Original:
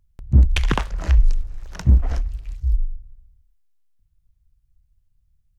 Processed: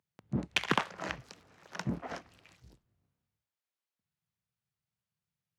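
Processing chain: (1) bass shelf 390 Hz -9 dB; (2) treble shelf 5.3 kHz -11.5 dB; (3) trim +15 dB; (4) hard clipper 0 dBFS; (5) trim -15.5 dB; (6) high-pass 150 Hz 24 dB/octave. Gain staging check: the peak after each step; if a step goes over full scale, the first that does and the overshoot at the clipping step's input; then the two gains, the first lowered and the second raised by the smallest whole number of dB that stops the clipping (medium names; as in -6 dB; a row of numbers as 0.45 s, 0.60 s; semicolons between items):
-6.5 dBFS, -7.0 dBFS, +8.0 dBFS, 0.0 dBFS, -15.5 dBFS, -12.0 dBFS; step 3, 8.0 dB; step 3 +7 dB, step 5 -7.5 dB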